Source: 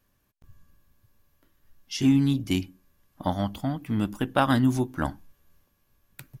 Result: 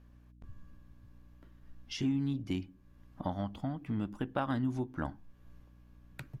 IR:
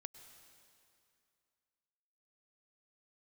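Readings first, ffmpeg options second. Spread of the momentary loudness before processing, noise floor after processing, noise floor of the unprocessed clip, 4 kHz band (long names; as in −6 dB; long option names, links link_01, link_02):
11 LU, −59 dBFS, −71 dBFS, −11.0 dB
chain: -af "aemphasis=mode=reproduction:type=75fm,aeval=exprs='val(0)+0.001*(sin(2*PI*60*n/s)+sin(2*PI*2*60*n/s)/2+sin(2*PI*3*60*n/s)/3+sin(2*PI*4*60*n/s)/4+sin(2*PI*5*60*n/s)/5)':channel_layout=same,acompressor=threshold=-45dB:ratio=2,volume=3dB"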